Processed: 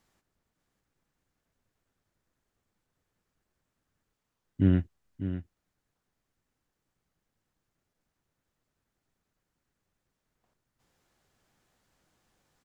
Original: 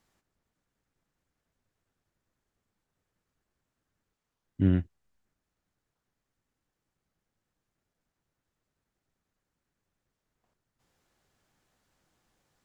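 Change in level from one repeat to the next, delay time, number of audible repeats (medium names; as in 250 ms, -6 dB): no regular repeats, 599 ms, 1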